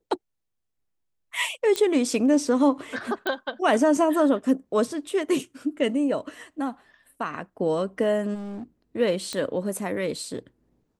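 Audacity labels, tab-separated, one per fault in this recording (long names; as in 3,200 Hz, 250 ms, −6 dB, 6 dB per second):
1.760000	1.760000	click −11 dBFS
3.270000	3.270000	click −14 dBFS
8.340000	8.640000	clipping −32.5 dBFS
9.330000	9.330000	click −16 dBFS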